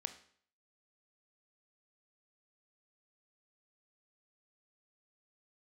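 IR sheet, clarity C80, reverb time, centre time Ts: 16.0 dB, 0.55 s, 8 ms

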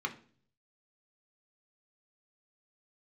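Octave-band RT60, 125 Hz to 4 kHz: 0.90 s, 0.65 s, 0.55 s, 0.40 s, 0.40 s, 0.45 s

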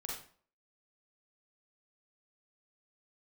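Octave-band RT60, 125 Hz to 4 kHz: 0.40 s, 0.50 s, 0.50 s, 0.45 s, 0.40 s, 0.35 s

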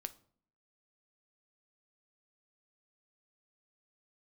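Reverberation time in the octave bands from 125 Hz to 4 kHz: 0.65 s, 0.75 s, 0.60 s, 0.50 s, 0.40 s, 0.35 s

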